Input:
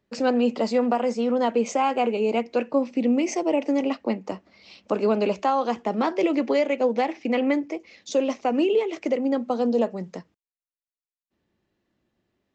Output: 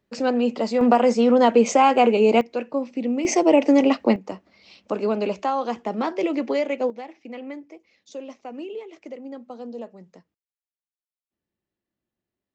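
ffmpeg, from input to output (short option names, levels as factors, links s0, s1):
-af "asetnsamples=n=441:p=0,asendcmd='0.81 volume volume 6.5dB;2.41 volume volume -3dB;3.25 volume volume 7dB;4.16 volume volume -1.5dB;6.9 volume volume -13dB',volume=1"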